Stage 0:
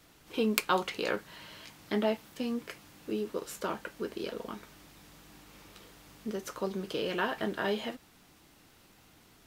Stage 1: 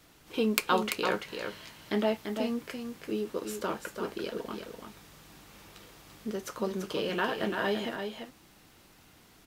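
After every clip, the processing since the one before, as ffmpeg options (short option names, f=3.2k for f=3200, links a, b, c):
-af "aecho=1:1:339:0.473,volume=1dB"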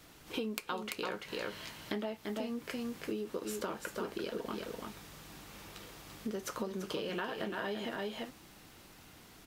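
-af "acompressor=threshold=-36dB:ratio=10,volume=2dB"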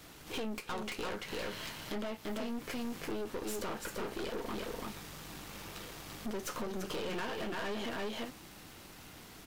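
-af "aeval=exprs='(tanh(126*val(0)+0.6)-tanh(0.6))/126':c=same,volume=7dB"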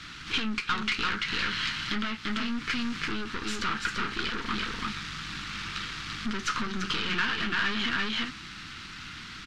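-af "firequalizer=gain_entry='entry(220,0);entry(560,-20);entry(1300,8);entry(1900,6);entry(4100,6);entry(14000,-30)':delay=0.05:min_phase=1,volume=8dB"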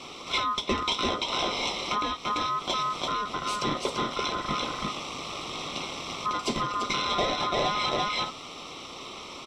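-af "afftfilt=real='real(if(lt(b,960),b+48*(1-2*mod(floor(b/48),2)),b),0)':imag='imag(if(lt(b,960),b+48*(1-2*mod(floor(b/48),2)),b),0)':win_size=2048:overlap=0.75,volume=1dB"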